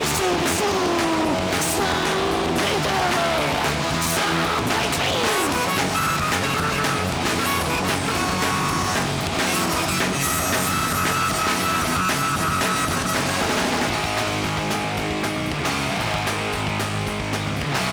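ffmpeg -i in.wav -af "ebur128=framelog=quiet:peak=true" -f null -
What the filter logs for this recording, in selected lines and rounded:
Integrated loudness:
  I:         -21.1 LUFS
  Threshold: -31.1 LUFS
Loudness range:
  LRA:         2.2 LU
  Threshold: -41.0 LUFS
  LRA low:   -22.6 LUFS
  LRA high:  -20.4 LUFS
True peak:
  Peak:       -8.2 dBFS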